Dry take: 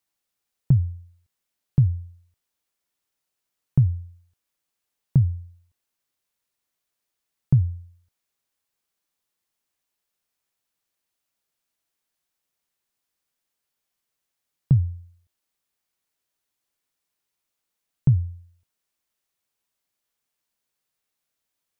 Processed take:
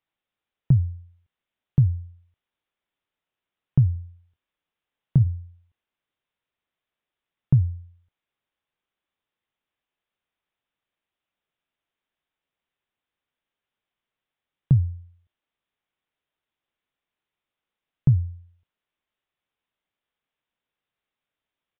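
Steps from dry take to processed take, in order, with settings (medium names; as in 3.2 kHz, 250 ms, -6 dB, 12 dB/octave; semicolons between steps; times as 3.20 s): resampled via 8 kHz; 3.93–5.27 s: doubling 26 ms -12 dB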